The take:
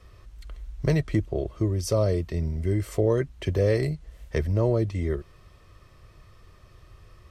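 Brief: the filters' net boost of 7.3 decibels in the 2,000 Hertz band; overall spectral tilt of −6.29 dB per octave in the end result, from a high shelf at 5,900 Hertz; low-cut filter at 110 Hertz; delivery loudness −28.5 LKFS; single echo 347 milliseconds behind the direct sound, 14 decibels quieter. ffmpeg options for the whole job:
ffmpeg -i in.wav -af "highpass=110,equalizer=frequency=2000:width_type=o:gain=7.5,highshelf=frequency=5900:gain=5.5,aecho=1:1:347:0.2,volume=-1.5dB" out.wav

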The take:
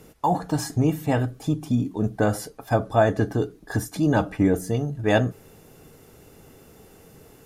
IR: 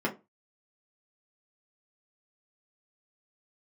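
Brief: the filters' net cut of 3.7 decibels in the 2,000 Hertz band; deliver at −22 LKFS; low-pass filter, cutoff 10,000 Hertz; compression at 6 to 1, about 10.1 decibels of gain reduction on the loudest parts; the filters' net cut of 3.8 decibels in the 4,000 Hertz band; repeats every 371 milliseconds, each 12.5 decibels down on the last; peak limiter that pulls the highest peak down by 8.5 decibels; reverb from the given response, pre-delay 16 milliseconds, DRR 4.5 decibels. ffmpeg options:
-filter_complex "[0:a]lowpass=10000,equalizer=frequency=2000:width_type=o:gain=-4.5,equalizer=frequency=4000:width_type=o:gain=-3.5,acompressor=threshold=-25dB:ratio=6,alimiter=limit=-24dB:level=0:latency=1,aecho=1:1:371|742|1113:0.237|0.0569|0.0137,asplit=2[link_01][link_02];[1:a]atrim=start_sample=2205,adelay=16[link_03];[link_02][link_03]afir=irnorm=-1:irlink=0,volume=-13dB[link_04];[link_01][link_04]amix=inputs=2:normalize=0,volume=10.5dB"

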